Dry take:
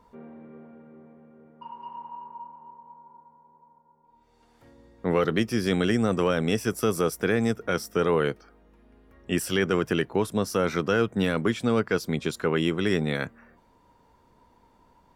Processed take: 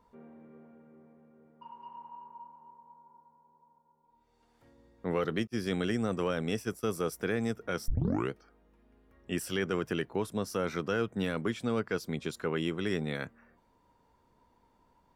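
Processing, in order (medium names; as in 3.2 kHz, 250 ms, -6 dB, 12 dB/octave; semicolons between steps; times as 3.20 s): 5.47–7.11 s: expander -25 dBFS; 7.88 s: tape start 0.43 s; trim -7.5 dB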